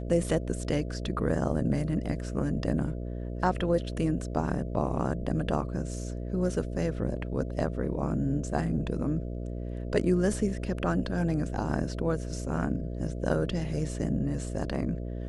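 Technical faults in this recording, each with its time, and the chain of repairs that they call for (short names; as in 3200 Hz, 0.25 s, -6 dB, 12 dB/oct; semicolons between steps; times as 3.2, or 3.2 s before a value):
buzz 60 Hz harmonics 11 -35 dBFS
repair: de-hum 60 Hz, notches 11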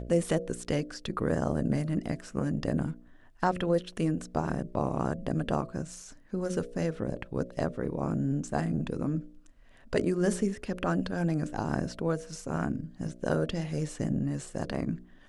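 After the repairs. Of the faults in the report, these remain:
none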